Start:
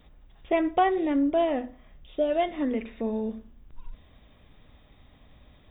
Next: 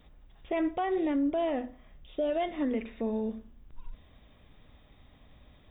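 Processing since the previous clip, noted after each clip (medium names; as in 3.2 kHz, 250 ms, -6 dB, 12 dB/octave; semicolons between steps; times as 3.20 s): peak limiter -20 dBFS, peak gain reduction 8.5 dB; trim -2 dB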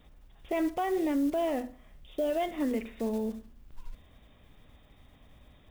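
block-companded coder 5-bit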